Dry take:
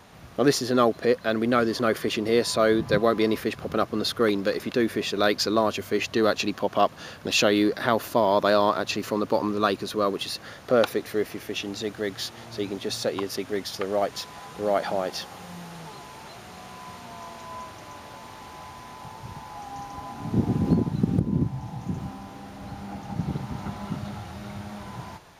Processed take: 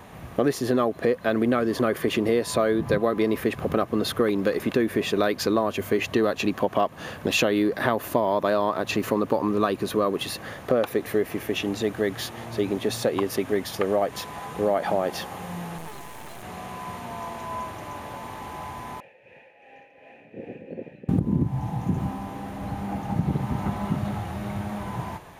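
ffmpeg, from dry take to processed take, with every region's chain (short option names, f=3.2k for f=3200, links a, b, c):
-filter_complex "[0:a]asettb=1/sr,asplit=3[a][b][c];[a]atrim=end=15.784[d];[b]atrim=start=15.78:end=16.43,asetpts=PTS-STARTPTS,afade=t=in:d=0.004:c=qsin,afade=t=out:st=0.646:d=0.004:c=qsin,highshelf=f=4.6k:g=6.5,aeval=exprs='max(val(0),0)':c=same[e];[c]atrim=start=16.426[f];[d][e]acrossfade=d=0.004:c1=hsin:c2=qsin[g];[g][f]acrossfade=d=0.004:c1=qsin:c2=hsin,asettb=1/sr,asplit=3[h][i][j];[h]atrim=end=19.004[k];[i]atrim=start=19:end=21.09,asetpts=PTS-STARTPTS,afade=t=in:d=0.004:c=qsin,afade=t=out:st=2.086:d=0.004:c=qsin,equalizer=f=2.4k:w=3.4:g=12.5,tremolo=f=2.7:d=0.54,asplit=3[l][m][n];[l]bandpass=f=530:t=q:w=8,volume=0dB[o];[m]bandpass=f=1.84k:t=q:w=8,volume=-6dB[p];[n]bandpass=f=2.48k:t=q:w=8,volume=-9dB[q];[o][p][q]amix=inputs=3:normalize=0[r];[j]atrim=start=21.086[s];[k][r]acrossfade=d=0.004:c1=hsin:c2=qsin[t];[t][s]acrossfade=d=0.004:c1=qsin:c2=hsin,equalizer=f=4.9k:w=1.1:g=-10.5,bandreject=f=1.4k:w=12,acompressor=threshold=-25dB:ratio=6,volume=6.5dB"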